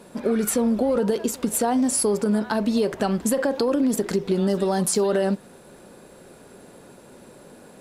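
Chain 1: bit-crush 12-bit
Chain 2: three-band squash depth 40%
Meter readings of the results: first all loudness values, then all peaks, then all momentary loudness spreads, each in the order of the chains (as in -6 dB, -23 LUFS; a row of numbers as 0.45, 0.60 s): -22.5, -22.5 LUFS; -11.5, -8.0 dBFS; 4, 17 LU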